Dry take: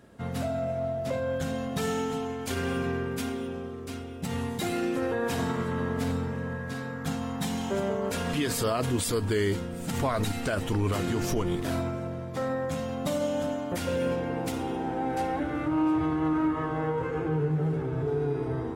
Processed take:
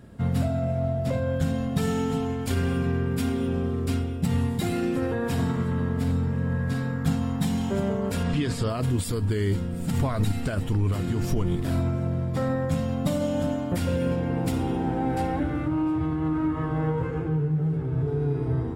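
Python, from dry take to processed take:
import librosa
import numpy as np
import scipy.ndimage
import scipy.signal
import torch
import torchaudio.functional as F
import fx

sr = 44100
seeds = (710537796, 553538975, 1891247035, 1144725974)

y = fx.lowpass(x, sr, hz=6900.0, slope=12, at=(8.23, 8.7))
y = fx.bass_treble(y, sr, bass_db=11, treble_db=1)
y = fx.notch(y, sr, hz=6200.0, q=10.0)
y = fx.rider(y, sr, range_db=10, speed_s=0.5)
y = y * librosa.db_to_amplitude(-2.0)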